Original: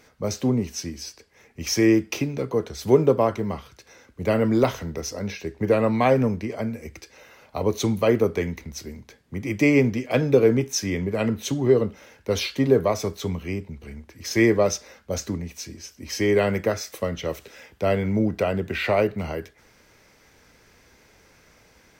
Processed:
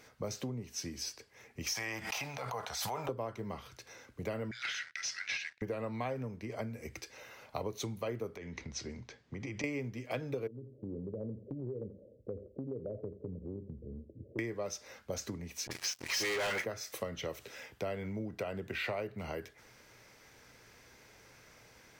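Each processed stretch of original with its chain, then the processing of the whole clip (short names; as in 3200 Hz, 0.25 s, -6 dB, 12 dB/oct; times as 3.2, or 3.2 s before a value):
1.73–3.09 resonant low shelf 530 Hz -13 dB, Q 3 + transient shaper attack -6 dB, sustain +5 dB + backwards sustainer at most 62 dB/s
4.51–5.62 steep high-pass 1500 Hz 72 dB/oct + sample leveller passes 3 + air absorption 130 m
8.37–9.64 LPF 6500 Hz 24 dB/oct + compressor 12:1, threshold -30 dBFS
10.47–14.39 steep low-pass 580 Hz 72 dB/oct + compressor 2.5:1, threshold -33 dBFS + feedback echo 85 ms, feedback 28%, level -16 dB
15.67–16.64 three-band isolator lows -20 dB, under 580 Hz, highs -15 dB, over 7000 Hz + dispersion highs, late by 41 ms, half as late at 1000 Hz + sample leveller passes 5
whole clip: bell 120 Hz +9.5 dB 0.25 oct; compressor 6:1, threshold -31 dBFS; low shelf 280 Hz -6 dB; gain -2.5 dB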